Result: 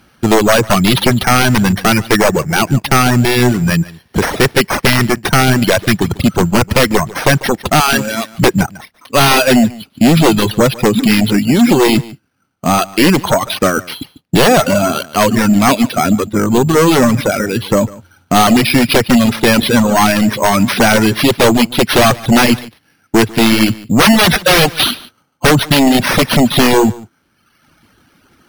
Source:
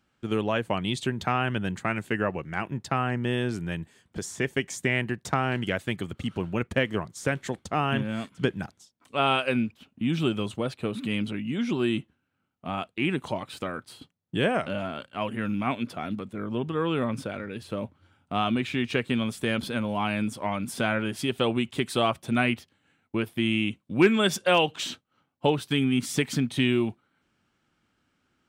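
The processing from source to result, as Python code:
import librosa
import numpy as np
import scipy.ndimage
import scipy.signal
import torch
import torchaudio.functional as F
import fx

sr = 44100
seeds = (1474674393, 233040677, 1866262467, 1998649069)

y = np.repeat(x[::6], 6)[:len(x)]
y = fx.highpass(y, sr, hz=610.0, slope=6, at=(7.8, 8.33))
y = fx.fold_sine(y, sr, drive_db=14, ceiling_db=-9.0)
y = y + 10.0 ** (-10.5 / 20.0) * np.pad(y, (int(146 * sr / 1000.0), 0))[:len(y)]
y = fx.dereverb_blind(y, sr, rt60_s=0.93)
y = y * 10.0 ** (5.0 / 20.0)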